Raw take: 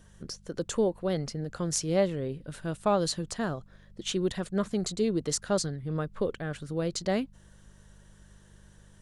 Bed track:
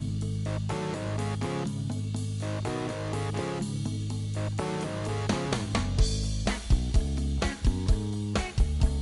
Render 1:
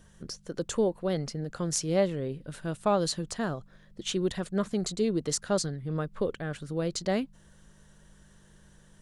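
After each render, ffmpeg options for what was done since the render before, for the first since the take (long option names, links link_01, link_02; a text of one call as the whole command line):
ffmpeg -i in.wav -af "bandreject=frequency=50:width_type=h:width=4,bandreject=frequency=100:width_type=h:width=4" out.wav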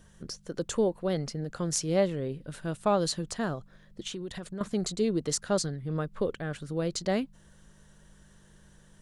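ffmpeg -i in.wav -filter_complex "[0:a]asettb=1/sr,asplit=3[link_01][link_02][link_03];[link_01]atrim=end=4.074[link_04];[link_02]atrim=start=4.07:end=4.61,asetpts=PTS-STARTPTS,afade=type=in:duration=0.004:curve=qsin,afade=type=out:start_time=0.536:duration=0.004:curve=qsin,acompressor=threshold=-34dB:ratio=6:attack=3.2:release=140:knee=1:detection=peak[link_05];[link_03]atrim=start=4.606[link_06];[link_04][link_05]acrossfade=duration=0.004:curve1=hsin:curve2=qsin[link_07];[link_07][link_06]acrossfade=duration=0.004:curve1=qsin:curve2=hsin" out.wav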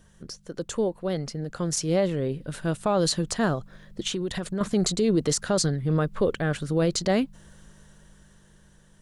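ffmpeg -i in.wav -af "dynaudnorm=framelen=280:gausssize=13:maxgain=9dB,alimiter=limit=-14.5dB:level=0:latency=1:release=24" out.wav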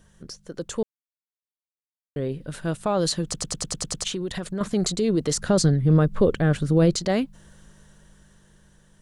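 ffmpeg -i in.wav -filter_complex "[0:a]asettb=1/sr,asplit=3[link_01][link_02][link_03];[link_01]atrim=end=5.344[link_04];[link_02]atrim=start=5.34:end=6.95,asetpts=PTS-STARTPTS,afade=type=in:duration=0.004:curve=qsin,afade=type=out:start_time=1.606:duration=0.004:curve=qsin,lowshelf=frequency=440:gain=8[link_05];[link_03]atrim=start=6.946[link_06];[link_04][link_05]acrossfade=duration=0.004:curve1=hsin:curve2=qsin[link_07];[link_07][link_06]acrossfade=duration=0.004:curve1=qsin:curve2=hsin,asplit=11[link_08][link_09][link_10][link_11][link_12][link_13][link_14][link_15][link_16][link_17][link_18];[link_08]atrim=end=0.83,asetpts=PTS-STARTPTS,afade=type=out:start_time=0.826:duration=0.004:curve=hsin[link_19];[link_09]atrim=start=0.83:end=2.16,asetpts=PTS-STARTPTS,volume=0[link_20];[link_10]atrim=start=2.16:end=3.342,asetpts=PTS-STARTPTS,afade=type=in:duration=0.004:curve=hsin[link_21];[link_11]atrim=start=3.238:end=3.342[link_22];[link_12]atrim=start=3.238:end=3.342[link_23];[link_13]atrim=start=3.238:end=3.342[link_24];[link_14]atrim=start=3.238:end=3.342[link_25];[link_15]atrim=start=3.238:end=3.342[link_26];[link_16]atrim=start=3.238:end=3.342[link_27];[link_17]atrim=start=3.238:end=3.342[link_28];[link_18]atrim=start=4.038[link_29];[link_19][link_20][link_21]concat=n=3:v=0:a=1[link_30];[link_30][link_22]acrossfade=duration=0.004:curve1=hsin:curve2=hsin[link_31];[link_31][link_23]acrossfade=duration=0.004:curve1=hsin:curve2=hsin[link_32];[link_32][link_24]acrossfade=duration=0.004:curve1=hsin:curve2=hsin[link_33];[link_33][link_25]acrossfade=duration=0.004:curve1=hsin:curve2=hsin[link_34];[link_34][link_26]acrossfade=duration=0.004:curve1=hsin:curve2=hsin[link_35];[link_35][link_27]acrossfade=duration=0.004:curve1=hsin:curve2=hsin[link_36];[link_36][link_28]acrossfade=duration=0.004:curve1=hsin:curve2=hsin[link_37];[link_37][link_29]acrossfade=duration=0.004:curve1=hsin:curve2=hsin" out.wav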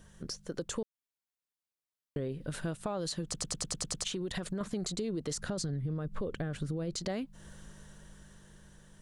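ffmpeg -i in.wav -af "alimiter=limit=-15.5dB:level=0:latency=1:release=29,acompressor=threshold=-33dB:ratio=6" out.wav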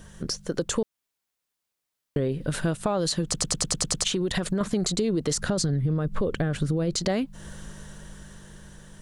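ffmpeg -i in.wav -af "volume=10dB" out.wav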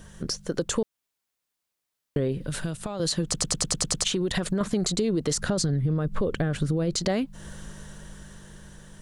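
ffmpeg -i in.wav -filter_complex "[0:a]asettb=1/sr,asplit=3[link_01][link_02][link_03];[link_01]atrim=end=2.374[link_04];[link_02]atrim=start=2.37:end=3,asetpts=PTS-STARTPTS,afade=type=in:duration=0.004:curve=qsin,afade=type=out:start_time=0.626:duration=0.004:curve=qsin,acrossover=split=140|3000[link_05][link_06][link_07];[link_06]acompressor=threshold=-36dB:ratio=2:attack=3.2:release=140:knee=2.83:detection=peak[link_08];[link_05][link_08][link_07]amix=inputs=3:normalize=0[link_09];[link_03]atrim=start=2.996[link_10];[link_04][link_09]acrossfade=duration=0.004:curve1=hsin:curve2=qsin[link_11];[link_11][link_10]acrossfade=duration=0.004:curve1=qsin:curve2=hsin" out.wav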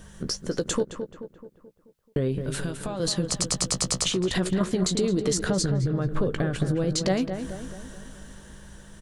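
ffmpeg -i in.wav -filter_complex "[0:a]asplit=2[link_01][link_02];[link_02]adelay=16,volume=-11dB[link_03];[link_01][link_03]amix=inputs=2:normalize=0,asplit=2[link_04][link_05];[link_05]adelay=216,lowpass=frequency=2000:poles=1,volume=-8dB,asplit=2[link_06][link_07];[link_07]adelay=216,lowpass=frequency=2000:poles=1,volume=0.52,asplit=2[link_08][link_09];[link_09]adelay=216,lowpass=frequency=2000:poles=1,volume=0.52,asplit=2[link_10][link_11];[link_11]adelay=216,lowpass=frequency=2000:poles=1,volume=0.52,asplit=2[link_12][link_13];[link_13]adelay=216,lowpass=frequency=2000:poles=1,volume=0.52,asplit=2[link_14][link_15];[link_15]adelay=216,lowpass=frequency=2000:poles=1,volume=0.52[link_16];[link_06][link_08][link_10][link_12][link_14][link_16]amix=inputs=6:normalize=0[link_17];[link_04][link_17]amix=inputs=2:normalize=0" out.wav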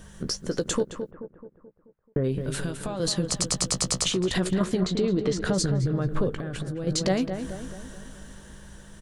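ffmpeg -i in.wav -filter_complex "[0:a]asplit=3[link_01][link_02][link_03];[link_01]afade=type=out:start_time=1.1:duration=0.02[link_04];[link_02]lowpass=frequency=1800:width=0.5412,lowpass=frequency=1800:width=1.3066,afade=type=in:start_time=1.1:duration=0.02,afade=type=out:start_time=2.23:duration=0.02[link_05];[link_03]afade=type=in:start_time=2.23:duration=0.02[link_06];[link_04][link_05][link_06]amix=inputs=3:normalize=0,asettb=1/sr,asplit=3[link_07][link_08][link_09];[link_07]atrim=end=4.804[link_10];[link_08]atrim=start=4.8:end=5.45,asetpts=PTS-STARTPTS,afade=type=in:duration=0.004:curve=qsin,afade=type=out:start_time=0.646:duration=0.004:curve=qsin,lowpass=3800[link_11];[link_09]atrim=start=5.446[link_12];[link_10][link_11]acrossfade=duration=0.004:curve1=hsin:curve2=qsin[link_13];[link_13][link_12]acrossfade=duration=0.004:curve1=qsin:curve2=hsin,asettb=1/sr,asplit=3[link_14][link_15][link_16];[link_14]atrim=end=6.294[link_17];[link_15]atrim=start=6.29:end=6.87,asetpts=PTS-STARTPTS,afade=type=in:duration=0.004:curve=qsin,afade=type=out:start_time=0.576:duration=0.004:curve=qsin,acompressor=threshold=-28dB:ratio=6:attack=3.2:release=140:knee=1:detection=peak[link_18];[link_16]atrim=start=6.866[link_19];[link_17][link_18]acrossfade=duration=0.004:curve1=hsin:curve2=qsin[link_20];[link_20][link_19]acrossfade=duration=0.004:curve1=qsin:curve2=hsin" out.wav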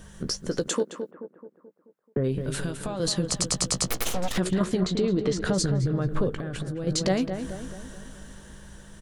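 ffmpeg -i in.wav -filter_complex "[0:a]asettb=1/sr,asplit=3[link_01][link_02][link_03];[link_01]atrim=end=0.684[link_04];[link_02]atrim=start=0.68:end=2.17,asetpts=PTS-STARTPTS,afade=type=in:duration=0.004:curve=qsin,afade=type=out:start_time=1.486:duration=0.004:curve=qsin,highpass=frequency=210:width=0.5412,highpass=frequency=210:width=1.3066[link_05];[link_03]atrim=start=2.166[link_06];[link_04][link_05]acrossfade=duration=0.004:curve1=hsin:curve2=qsin[link_07];[link_07][link_06]acrossfade=duration=0.004:curve1=qsin:curve2=hsin,asettb=1/sr,asplit=3[link_08][link_09][link_10];[link_08]atrim=end=3.874[link_11];[link_09]atrim=start=3.87:end=4.38,asetpts=PTS-STARTPTS,afade=type=in:duration=0.004:curve=qsin,afade=type=out:start_time=0.506:duration=0.004:curve=qsin,aeval=exprs='abs(val(0))':channel_layout=same[link_12];[link_10]atrim=start=4.376[link_13];[link_11][link_12]acrossfade=duration=0.004:curve1=hsin:curve2=qsin[link_14];[link_14][link_13]acrossfade=duration=0.004:curve1=qsin:curve2=hsin" out.wav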